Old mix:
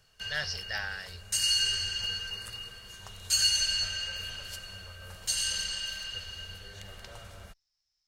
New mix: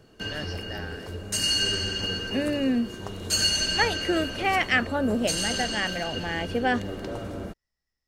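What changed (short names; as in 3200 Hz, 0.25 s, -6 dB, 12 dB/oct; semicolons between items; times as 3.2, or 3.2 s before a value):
first voice -11.5 dB; second voice: unmuted; master: remove passive tone stack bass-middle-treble 10-0-10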